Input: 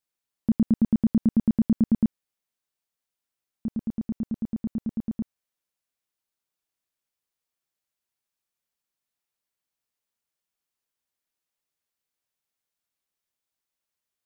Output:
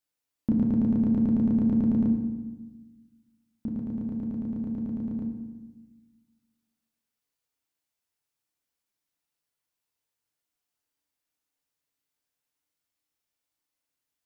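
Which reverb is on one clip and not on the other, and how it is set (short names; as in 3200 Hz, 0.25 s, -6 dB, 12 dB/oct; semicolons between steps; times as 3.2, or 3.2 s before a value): FDN reverb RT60 1.2 s, low-frequency decay 1.4×, high-frequency decay 0.85×, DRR 1 dB; gain -1.5 dB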